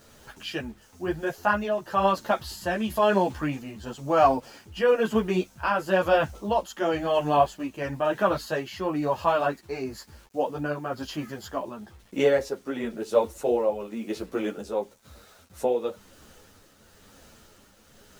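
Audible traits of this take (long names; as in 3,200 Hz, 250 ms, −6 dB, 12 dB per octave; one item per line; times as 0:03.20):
a quantiser's noise floor 10 bits, dither none
tremolo triangle 1 Hz, depth 50%
a shimmering, thickened sound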